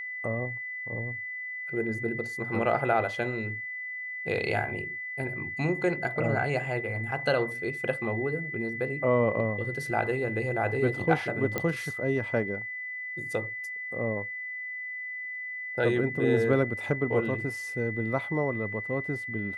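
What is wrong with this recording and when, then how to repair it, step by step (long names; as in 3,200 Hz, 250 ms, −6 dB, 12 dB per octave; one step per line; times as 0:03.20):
whistle 2,000 Hz −34 dBFS
0:11.58: click −14 dBFS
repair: click removal
notch filter 2,000 Hz, Q 30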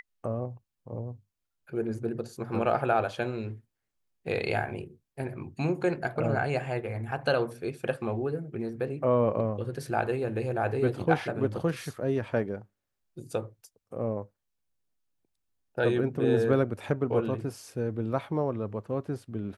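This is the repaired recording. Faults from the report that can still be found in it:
none of them is left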